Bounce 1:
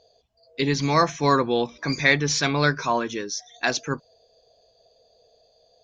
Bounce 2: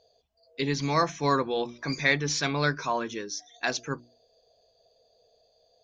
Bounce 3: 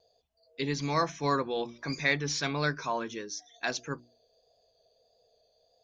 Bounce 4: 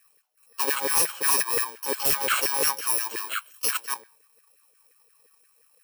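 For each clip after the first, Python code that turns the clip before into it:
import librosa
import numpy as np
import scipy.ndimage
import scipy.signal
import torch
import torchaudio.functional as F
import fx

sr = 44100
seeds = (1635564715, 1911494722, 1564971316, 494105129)

y1 = fx.hum_notches(x, sr, base_hz=60, count=6)
y1 = F.gain(torch.from_numpy(y1), -5.0).numpy()
y2 = fx.vibrato(y1, sr, rate_hz=1.6, depth_cents=25.0)
y2 = F.gain(torch.from_numpy(y2), -3.5).numpy()
y3 = fx.bit_reversed(y2, sr, seeds[0], block=64)
y3 = fx.filter_lfo_highpass(y3, sr, shape='saw_down', hz=5.7, low_hz=440.0, high_hz=1900.0, q=4.7)
y3 = 10.0 ** (-20.0 / 20.0) * (np.abs((y3 / 10.0 ** (-20.0 / 20.0) + 3.0) % 4.0 - 2.0) - 1.0)
y3 = F.gain(torch.from_numpy(y3), 6.5).numpy()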